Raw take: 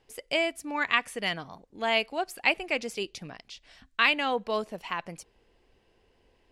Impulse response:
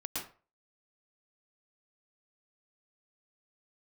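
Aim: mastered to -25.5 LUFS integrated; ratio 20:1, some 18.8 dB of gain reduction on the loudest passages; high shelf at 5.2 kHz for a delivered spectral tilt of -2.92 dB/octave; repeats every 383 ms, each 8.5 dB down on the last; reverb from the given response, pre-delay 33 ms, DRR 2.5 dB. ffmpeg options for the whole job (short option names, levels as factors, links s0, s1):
-filter_complex "[0:a]highshelf=f=5200:g=3.5,acompressor=threshold=0.0158:ratio=20,aecho=1:1:383|766|1149|1532:0.376|0.143|0.0543|0.0206,asplit=2[s0][s1];[1:a]atrim=start_sample=2205,adelay=33[s2];[s1][s2]afir=irnorm=-1:irlink=0,volume=0.596[s3];[s0][s3]amix=inputs=2:normalize=0,volume=4.73"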